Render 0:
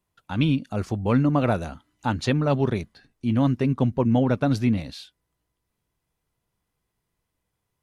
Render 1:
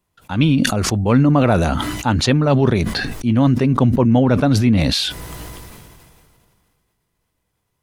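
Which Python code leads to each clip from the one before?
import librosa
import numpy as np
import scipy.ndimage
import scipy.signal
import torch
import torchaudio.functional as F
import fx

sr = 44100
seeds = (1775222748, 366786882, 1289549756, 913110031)

y = fx.sustainer(x, sr, db_per_s=26.0)
y = y * 10.0 ** (6.0 / 20.0)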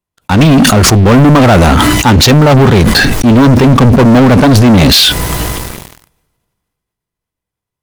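y = fx.leveller(x, sr, passes=5)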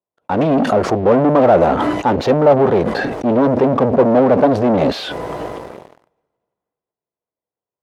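y = fx.bandpass_q(x, sr, hz=560.0, q=1.7)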